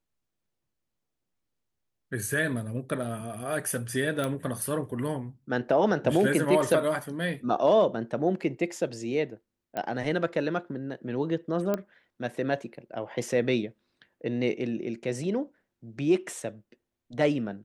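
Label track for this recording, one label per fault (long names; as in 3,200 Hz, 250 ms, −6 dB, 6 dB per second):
4.240000	4.240000	click −17 dBFS
9.770000	9.770000	click −19 dBFS
11.740000	11.740000	click −15 dBFS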